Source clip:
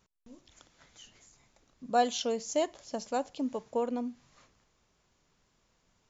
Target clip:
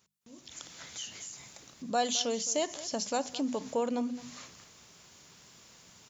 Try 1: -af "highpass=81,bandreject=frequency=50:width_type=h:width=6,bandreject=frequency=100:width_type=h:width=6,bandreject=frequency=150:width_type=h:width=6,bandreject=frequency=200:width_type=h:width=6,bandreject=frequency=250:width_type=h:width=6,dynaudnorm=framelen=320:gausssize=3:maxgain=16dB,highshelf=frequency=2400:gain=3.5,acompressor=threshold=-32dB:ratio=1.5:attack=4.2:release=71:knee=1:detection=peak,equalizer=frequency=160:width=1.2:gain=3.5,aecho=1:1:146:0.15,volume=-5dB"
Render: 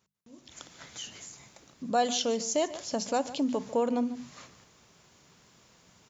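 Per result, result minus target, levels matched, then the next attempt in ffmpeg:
echo 68 ms early; downward compressor: peak gain reduction −4 dB; 4,000 Hz band −3.0 dB
-af "highpass=81,bandreject=frequency=50:width_type=h:width=6,bandreject=frequency=100:width_type=h:width=6,bandreject=frequency=150:width_type=h:width=6,bandreject=frequency=200:width_type=h:width=6,bandreject=frequency=250:width_type=h:width=6,dynaudnorm=framelen=320:gausssize=3:maxgain=16dB,highshelf=frequency=2400:gain=3.5,acompressor=threshold=-32dB:ratio=1.5:attack=4.2:release=71:knee=1:detection=peak,equalizer=frequency=160:width=1.2:gain=3.5,aecho=1:1:214:0.15,volume=-5dB"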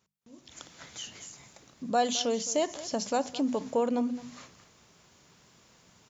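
downward compressor: peak gain reduction −4 dB; 4,000 Hz band −3.0 dB
-af "highpass=81,bandreject=frequency=50:width_type=h:width=6,bandreject=frequency=100:width_type=h:width=6,bandreject=frequency=150:width_type=h:width=6,bandreject=frequency=200:width_type=h:width=6,bandreject=frequency=250:width_type=h:width=6,dynaudnorm=framelen=320:gausssize=3:maxgain=16dB,highshelf=frequency=2400:gain=3.5,acompressor=threshold=-43dB:ratio=1.5:attack=4.2:release=71:knee=1:detection=peak,equalizer=frequency=160:width=1.2:gain=3.5,aecho=1:1:214:0.15,volume=-5dB"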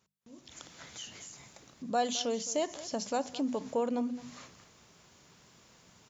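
4,000 Hz band −3.0 dB
-af "highpass=81,bandreject=frequency=50:width_type=h:width=6,bandreject=frequency=100:width_type=h:width=6,bandreject=frequency=150:width_type=h:width=6,bandreject=frequency=200:width_type=h:width=6,bandreject=frequency=250:width_type=h:width=6,dynaudnorm=framelen=320:gausssize=3:maxgain=16dB,highshelf=frequency=2400:gain=11,acompressor=threshold=-43dB:ratio=1.5:attack=4.2:release=71:knee=1:detection=peak,equalizer=frequency=160:width=1.2:gain=3.5,aecho=1:1:214:0.15,volume=-5dB"

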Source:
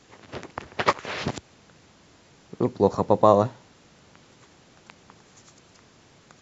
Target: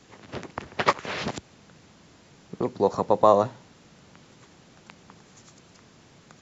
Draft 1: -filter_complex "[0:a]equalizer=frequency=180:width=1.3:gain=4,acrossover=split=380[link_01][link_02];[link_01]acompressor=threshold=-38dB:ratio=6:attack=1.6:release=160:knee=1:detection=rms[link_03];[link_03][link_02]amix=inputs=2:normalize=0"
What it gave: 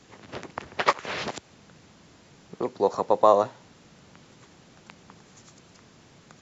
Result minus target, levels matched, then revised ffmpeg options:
downward compressor: peak gain reduction +9 dB
-filter_complex "[0:a]equalizer=frequency=180:width=1.3:gain=4,acrossover=split=380[link_01][link_02];[link_01]acompressor=threshold=-27dB:ratio=6:attack=1.6:release=160:knee=1:detection=rms[link_03];[link_03][link_02]amix=inputs=2:normalize=0"

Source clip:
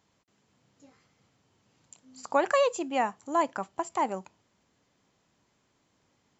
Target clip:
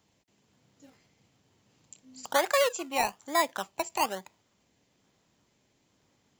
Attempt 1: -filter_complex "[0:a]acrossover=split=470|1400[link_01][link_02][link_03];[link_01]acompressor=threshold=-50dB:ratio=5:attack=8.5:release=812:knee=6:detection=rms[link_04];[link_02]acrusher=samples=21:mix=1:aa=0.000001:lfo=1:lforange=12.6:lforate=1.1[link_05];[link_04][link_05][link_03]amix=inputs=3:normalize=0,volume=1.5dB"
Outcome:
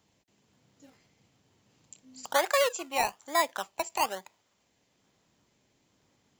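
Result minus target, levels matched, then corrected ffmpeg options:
downward compressor: peak gain reduction +7.5 dB
-filter_complex "[0:a]acrossover=split=470|1400[link_01][link_02][link_03];[link_01]acompressor=threshold=-40.5dB:ratio=5:attack=8.5:release=812:knee=6:detection=rms[link_04];[link_02]acrusher=samples=21:mix=1:aa=0.000001:lfo=1:lforange=12.6:lforate=1.1[link_05];[link_04][link_05][link_03]amix=inputs=3:normalize=0,volume=1.5dB"

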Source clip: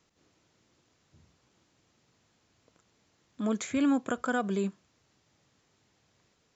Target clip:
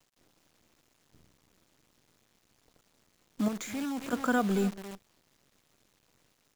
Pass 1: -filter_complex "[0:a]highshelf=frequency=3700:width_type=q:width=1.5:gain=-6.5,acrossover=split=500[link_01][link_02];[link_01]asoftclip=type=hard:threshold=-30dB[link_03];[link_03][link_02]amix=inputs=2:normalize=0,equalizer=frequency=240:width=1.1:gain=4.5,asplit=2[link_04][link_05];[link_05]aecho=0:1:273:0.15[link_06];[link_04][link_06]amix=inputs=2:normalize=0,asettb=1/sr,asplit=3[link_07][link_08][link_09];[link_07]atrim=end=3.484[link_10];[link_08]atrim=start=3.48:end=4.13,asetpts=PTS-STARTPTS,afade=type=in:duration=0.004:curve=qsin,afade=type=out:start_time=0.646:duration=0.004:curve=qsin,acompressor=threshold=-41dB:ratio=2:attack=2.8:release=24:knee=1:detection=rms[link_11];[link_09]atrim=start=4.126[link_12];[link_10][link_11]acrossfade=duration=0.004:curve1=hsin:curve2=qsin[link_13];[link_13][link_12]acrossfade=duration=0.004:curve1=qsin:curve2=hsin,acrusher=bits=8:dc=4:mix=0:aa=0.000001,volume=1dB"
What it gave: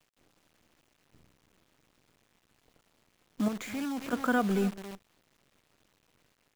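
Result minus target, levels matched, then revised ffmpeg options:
8,000 Hz band −3.5 dB
-filter_complex "[0:a]acrossover=split=500[link_01][link_02];[link_01]asoftclip=type=hard:threshold=-30dB[link_03];[link_03][link_02]amix=inputs=2:normalize=0,equalizer=frequency=240:width=1.1:gain=4.5,asplit=2[link_04][link_05];[link_05]aecho=0:1:273:0.15[link_06];[link_04][link_06]amix=inputs=2:normalize=0,asettb=1/sr,asplit=3[link_07][link_08][link_09];[link_07]atrim=end=3.484[link_10];[link_08]atrim=start=3.48:end=4.13,asetpts=PTS-STARTPTS,afade=type=in:duration=0.004:curve=qsin,afade=type=out:start_time=0.646:duration=0.004:curve=qsin,acompressor=threshold=-41dB:ratio=2:attack=2.8:release=24:knee=1:detection=rms[link_11];[link_09]atrim=start=4.126[link_12];[link_10][link_11]acrossfade=duration=0.004:curve1=hsin:curve2=qsin[link_13];[link_13][link_12]acrossfade=duration=0.004:curve1=qsin:curve2=hsin,acrusher=bits=8:dc=4:mix=0:aa=0.000001,volume=1dB"

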